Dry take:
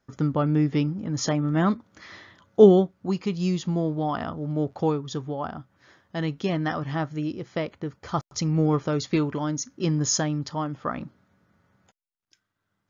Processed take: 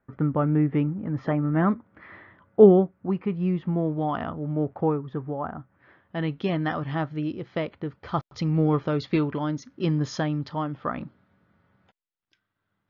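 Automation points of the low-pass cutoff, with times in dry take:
low-pass 24 dB/octave
3.64 s 2.2 kHz
4.16 s 3.3 kHz
4.83 s 2 kHz
5.58 s 2 kHz
6.47 s 3.9 kHz

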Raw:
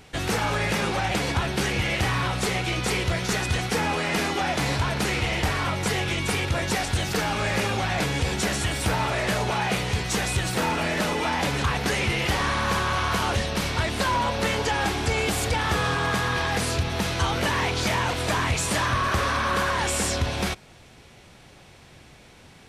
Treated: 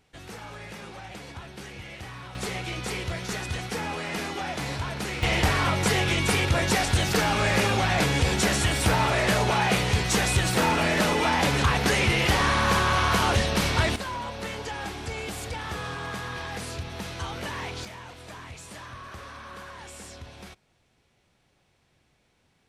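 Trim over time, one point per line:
-16 dB
from 2.35 s -6.5 dB
from 5.23 s +2 dB
from 13.96 s -9.5 dB
from 17.85 s -18 dB

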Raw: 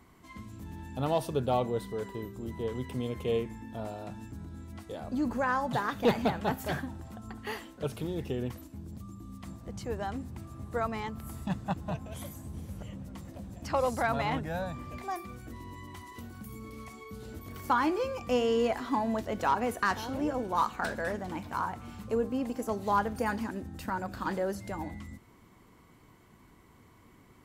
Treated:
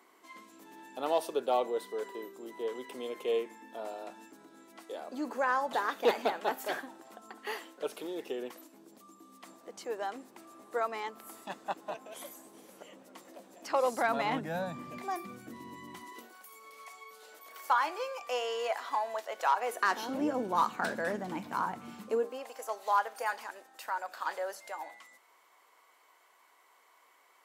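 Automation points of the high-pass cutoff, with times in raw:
high-pass 24 dB/octave
13.67 s 340 Hz
14.54 s 160 Hz
15.96 s 160 Hz
16.43 s 570 Hz
19.57 s 570 Hz
20.22 s 160 Hz
21.92 s 160 Hz
22.46 s 580 Hz

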